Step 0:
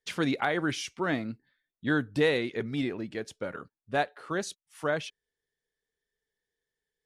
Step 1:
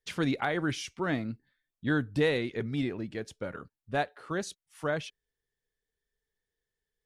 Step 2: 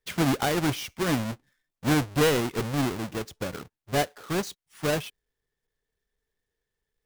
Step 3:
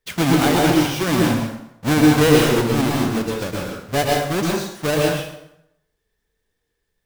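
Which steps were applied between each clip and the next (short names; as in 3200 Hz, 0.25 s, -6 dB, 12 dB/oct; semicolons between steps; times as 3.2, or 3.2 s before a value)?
low shelf 110 Hz +12 dB; gain -2.5 dB
half-waves squared off
plate-style reverb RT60 0.79 s, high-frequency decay 0.8×, pre-delay 0.1 s, DRR -2 dB; gain +4.5 dB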